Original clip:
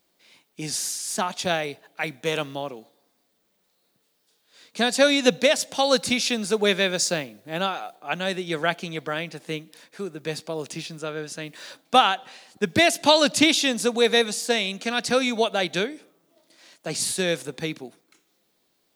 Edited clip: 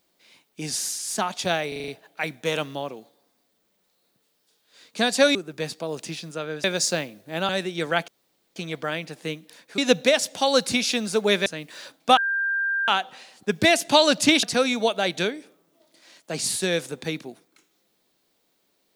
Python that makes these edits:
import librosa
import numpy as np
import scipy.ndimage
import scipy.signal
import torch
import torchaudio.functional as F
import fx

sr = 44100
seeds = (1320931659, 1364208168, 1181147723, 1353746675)

y = fx.edit(x, sr, fx.stutter(start_s=1.68, slice_s=0.04, count=6),
    fx.swap(start_s=5.15, length_s=1.68, other_s=10.02, other_length_s=1.29),
    fx.cut(start_s=7.68, length_s=0.53),
    fx.insert_room_tone(at_s=8.8, length_s=0.48),
    fx.insert_tone(at_s=12.02, length_s=0.71, hz=1590.0, db=-21.5),
    fx.cut(start_s=13.57, length_s=1.42), tone=tone)